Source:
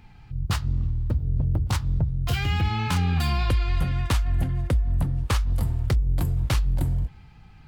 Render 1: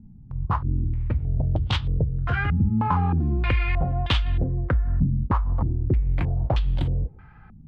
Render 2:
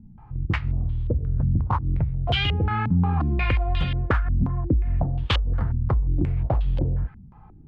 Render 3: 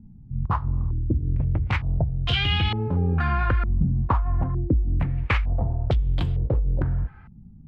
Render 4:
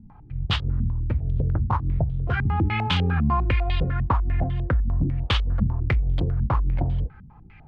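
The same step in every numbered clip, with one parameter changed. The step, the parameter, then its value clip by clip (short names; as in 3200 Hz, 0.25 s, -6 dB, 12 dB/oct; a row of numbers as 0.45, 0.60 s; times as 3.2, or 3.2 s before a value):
stepped low-pass, rate: 3.2, 5.6, 2.2, 10 Hz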